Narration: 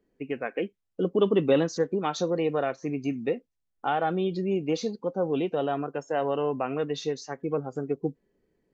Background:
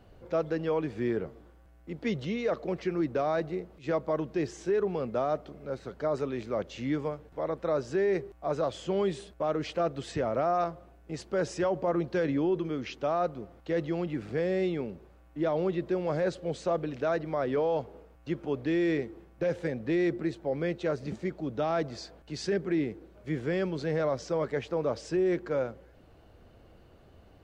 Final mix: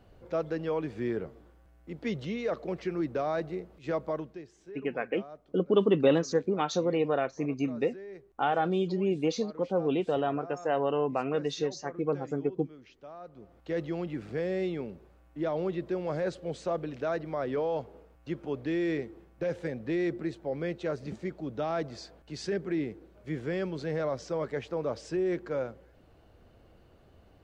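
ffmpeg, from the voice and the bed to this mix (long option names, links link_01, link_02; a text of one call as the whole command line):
ffmpeg -i stem1.wav -i stem2.wav -filter_complex "[0:a]adelay=4550,volume=-1dB[link_01];[1:a]volume=13dB,afade=type=out:start_time=4.07:duration=0.36:silence=0.16788,afade=type=in:start_time=13.25:duration=0.47:silence=0.177828[link_02];[link_01][link_02]amix=inputs=2:normalize=0" out.wav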